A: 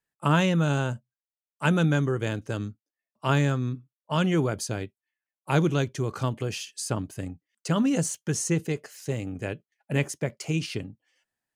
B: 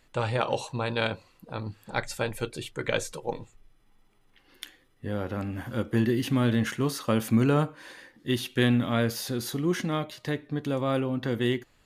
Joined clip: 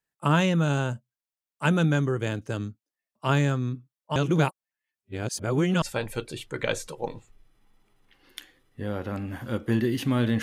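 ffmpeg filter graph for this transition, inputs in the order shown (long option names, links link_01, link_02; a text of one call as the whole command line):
ffmpeg -i cue0.wav -i cue1.wav -filter_complex "[0:a]apad=whole_dur=10.42,atrim=end=10.42,asplit=2[link_01][link_02];[link_01]atrim=end=4.162[link_03];[link_02]atrim=start=4.158:end=5.822,asetpts=PTS-STARTPTS,areverse[link_04];[1:a]atrim=start=2.068:end=6.67[link_05];[link_03][link_04]acrossfade=duration=0.004:curve1=hsin:curve2=hsin[link_06];[link_06][link_05]acrossfade=duration=0.004:curve1=hsin:curve2=hsin" out.wav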